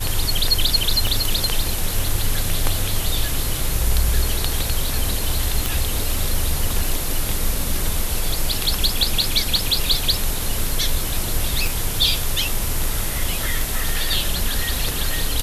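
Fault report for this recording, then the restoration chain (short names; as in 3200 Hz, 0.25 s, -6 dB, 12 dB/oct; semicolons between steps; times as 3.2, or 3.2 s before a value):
1.07 pop
5.66 pop
11.67 pop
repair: de-click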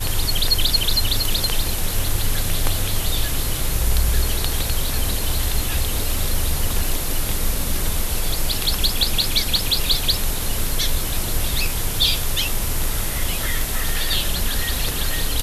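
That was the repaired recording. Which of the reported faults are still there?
1.07 pop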